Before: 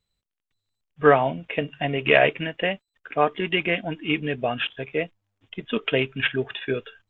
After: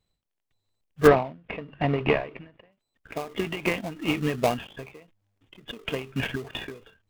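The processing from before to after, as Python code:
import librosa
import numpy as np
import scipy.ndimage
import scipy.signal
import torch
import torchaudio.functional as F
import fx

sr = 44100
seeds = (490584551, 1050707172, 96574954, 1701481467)

p1 = fx.sample_hold(x, sr, seeds[0], rate_hz=1600.0, jitter_pct=20)
p2 = x + (p1 * librosa.db_to_amplitude(-4.5))
p3 = fx.air_absorb(p2, sr, metres=370.0, at=(1.06, 2.71), fade=0.02)
y = fx.end_taper(p3, sr, db_per_s=130.0)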